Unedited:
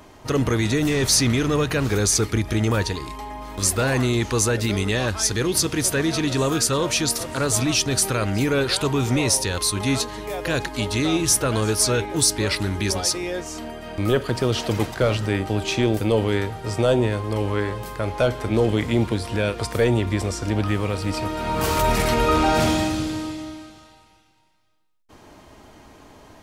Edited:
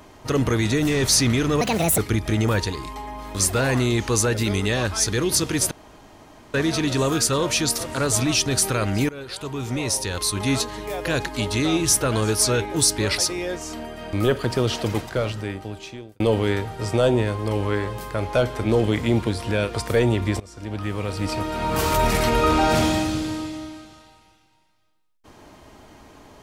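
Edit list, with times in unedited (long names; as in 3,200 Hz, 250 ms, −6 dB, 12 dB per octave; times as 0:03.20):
0:01.61–0:02.21: play speed 162%
0:05.94: splice in room tone 0.83 s
0:08.49–0:09.92: fade in, from −18.5 dB
0:12.58–0:13.03: remove
0:14.48–0:16.05: fade out
0:20.25–0:21.16: fade in, from −21.5 dB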